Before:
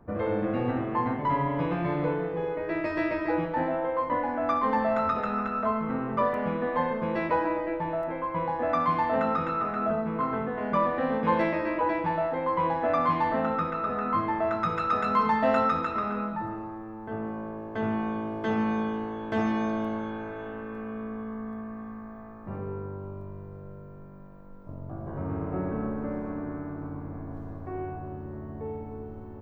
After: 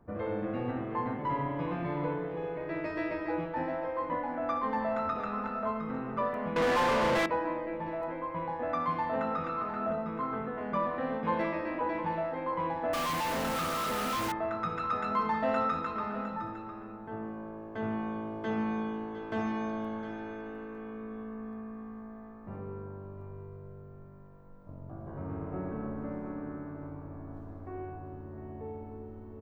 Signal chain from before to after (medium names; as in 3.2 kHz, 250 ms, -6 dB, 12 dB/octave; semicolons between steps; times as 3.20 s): delay 708 ms -12 dB; 6.56–7.26 s: overdrive pedal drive 37 dB, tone 2.3 kHz, clips at -14 dBFS; 12.93–14.32 s: companded quantiser 2-bit; trim -6 dB